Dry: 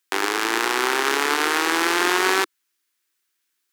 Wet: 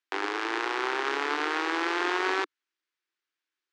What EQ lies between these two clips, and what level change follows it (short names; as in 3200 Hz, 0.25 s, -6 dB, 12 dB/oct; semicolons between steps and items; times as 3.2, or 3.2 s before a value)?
elliptic high-pass 290 Hz, stop band 40 dB; air absorption 150 m; -6.0 dB